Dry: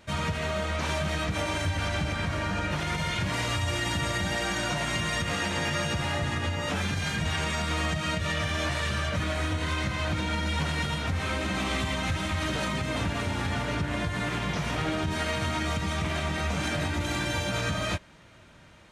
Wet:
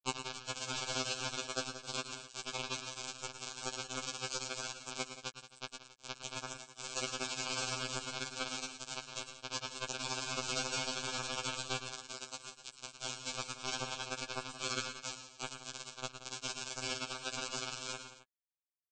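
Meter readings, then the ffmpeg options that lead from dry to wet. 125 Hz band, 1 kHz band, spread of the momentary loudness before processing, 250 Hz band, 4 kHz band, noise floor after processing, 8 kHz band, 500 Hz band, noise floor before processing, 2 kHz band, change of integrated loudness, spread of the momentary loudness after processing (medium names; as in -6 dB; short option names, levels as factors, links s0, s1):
-22.0 dB, -11.5 dB, 2 LU, -17.5 dB, -6.5 dB, -63 dBFS, -2.0 dB, -12.5 dB, -53 dBFS, -13.0 dB, -10.5 dB, 9 LU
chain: -filter_complex "[0:a]afftfilt=real='re*pow(10,16/40*sin(2*PI*(0.87*log(max(b,1)*sr/1024/100)/log(2)-(-0.31)*(pts-256)/sr)))':imag='im*pow(10,16/40*sin(2*PI*(0.87*log(max(b,1)*sr/1024/100)/log(2)-(-0.31)*(pts-256)/sr)))':win_size=1024:overlap=0.75,adynamicequalizer=threshold=0.00398:dfrequency=5100:dqfactor=1.4:tfrequency=5100:tqfactor=1.4:attack=5:release=100:ratio=0.375:range=2:mode=boostabove:tftype=bell,acompressor=threshold=0.0398:ratio=2,alimiter=level_in=1.41:limit=0.0631:level=0:latency=1:release=106,volume=0.708,acrossover=split=98|320|1500|5200[s0][s1][s2][s3][s4];[s0]acompressor=threshold=0.00708:ratio=4[s5];[s1]acompressor=threshold=0.00224:ratio=4[s6];[s2]acompressor=threshold=0.00316:ratio=4[s7];[s3]acompressor=threshold=0.00251:ratio=4[s8];[s4]acompressor=threshold=0.00178:ratio=4[s9];[s5][s6][s7][s8][s9]amix=inputs=5:normalize=0,aresample=16000,acrusher=bits=3:dc=4:mix=0:aa=0.000001,aresample=44100,aeval=exprs='val(0)*sin(2*PI*420*n/s)':c=same,asuperstop=centerf=1900:order=20:qfactor=4,asplit=2[s10][s11];[s11]aecho=0:1:104|111|176|265:0.119|0.316|0.211|0.126[s12];[s10][s12]amix=inputs=2:normalize=0,afftfilt=real='re*2.45*eq(mod(b,6),0)':imag='im*2.45*eq(mod(b,6),0)':win_size=2048:overlap=0.75,volume=6.31"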